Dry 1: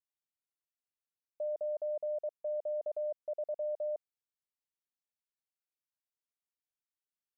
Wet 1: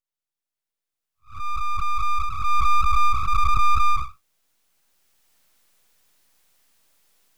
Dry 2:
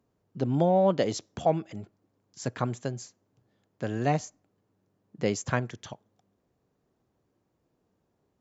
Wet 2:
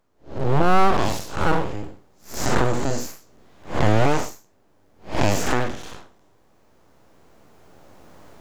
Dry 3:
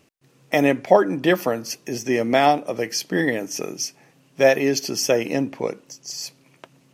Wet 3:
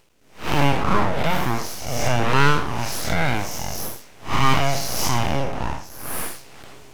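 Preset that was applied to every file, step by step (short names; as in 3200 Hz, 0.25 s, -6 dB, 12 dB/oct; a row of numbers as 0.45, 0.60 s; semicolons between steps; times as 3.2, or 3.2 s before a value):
time blur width 0.181 s; recorder AGC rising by 7.1 dB/s; full-wave rectifier; match loudness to -23 LUFS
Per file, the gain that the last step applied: +4.5, +8.5, +5.5 dB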